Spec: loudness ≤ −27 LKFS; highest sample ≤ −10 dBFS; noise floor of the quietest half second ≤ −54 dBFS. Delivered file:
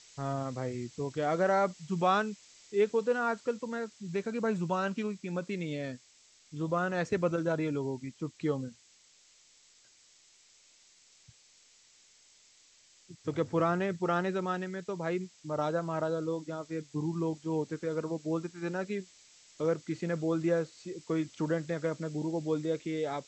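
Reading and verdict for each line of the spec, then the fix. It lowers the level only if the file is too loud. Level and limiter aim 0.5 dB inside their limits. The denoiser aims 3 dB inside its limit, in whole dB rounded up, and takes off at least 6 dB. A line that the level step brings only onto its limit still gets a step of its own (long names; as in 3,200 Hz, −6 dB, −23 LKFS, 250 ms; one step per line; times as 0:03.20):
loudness −33.0 LKFS: in spec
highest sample −15.5 dBFS: in spec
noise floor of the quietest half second −63 dBFS: in spec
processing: no processing needed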